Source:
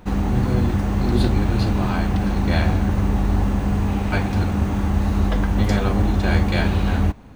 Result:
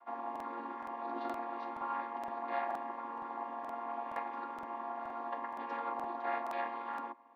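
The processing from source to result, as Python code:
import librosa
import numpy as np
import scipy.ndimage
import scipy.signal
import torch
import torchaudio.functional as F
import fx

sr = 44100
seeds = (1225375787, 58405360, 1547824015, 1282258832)

y = fx.chord_vocoder(x, sr, chord='minor triad', root=58)
y = fx.ladder_bandpass(y, sr, hz=1100.0, resonance_pct=50)
y = fx.buffer_crackle(y, sr, first_s=0.31, period_s=0.47, block=2048, kind='repeat')
y = F.gain(torch.from_numpy(y), 5.0).numpy()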